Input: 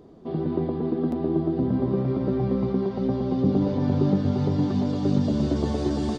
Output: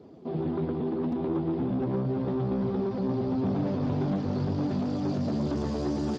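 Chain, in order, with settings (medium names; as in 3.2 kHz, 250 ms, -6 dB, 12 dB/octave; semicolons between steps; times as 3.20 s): saturation -25 dBFS, distortion -9 dB; 2.46–4.81 s: frequency-shifting echo 132 ms, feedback 30%, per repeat -150 Hz, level -9 dB; Speex 15 kbps 32 kHz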